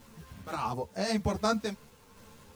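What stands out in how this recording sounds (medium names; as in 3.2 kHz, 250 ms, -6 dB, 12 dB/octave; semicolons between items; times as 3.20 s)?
a quantiser's noise floor 10-bit, dither none; random-step tremolo 3.7 Hz; a shimmering, thickened sound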